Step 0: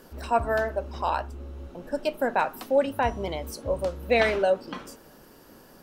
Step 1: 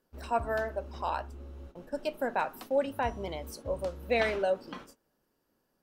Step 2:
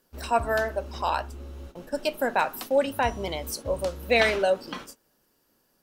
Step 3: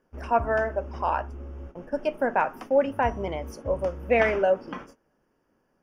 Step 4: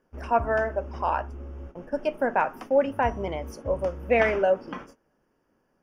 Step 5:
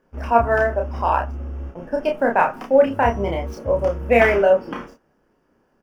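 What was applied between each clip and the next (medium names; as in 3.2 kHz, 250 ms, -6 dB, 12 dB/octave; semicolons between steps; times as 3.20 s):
gate -41 dBFS, range -19 dB; trim -6 dB
treble shelf 2.4 kHz +8.5 dB; trim +5 dB
boxcar filter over 11 samples; trim +1.5 dB
no audible change
median filter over 5 samples; doubling 30 ms -3 dB; trim +5 dB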